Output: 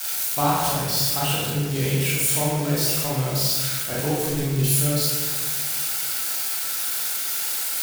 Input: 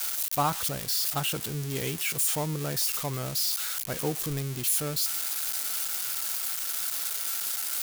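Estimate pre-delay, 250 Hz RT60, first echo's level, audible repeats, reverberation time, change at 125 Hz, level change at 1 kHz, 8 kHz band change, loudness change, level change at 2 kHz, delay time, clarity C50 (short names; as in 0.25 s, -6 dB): 27 ms, 1.8 s, none, none, 1.5 s, +10.0 dB, +6.5 dB, +5.0 dB, +6.0 dB, +7.0 dB, none, -1.5 dB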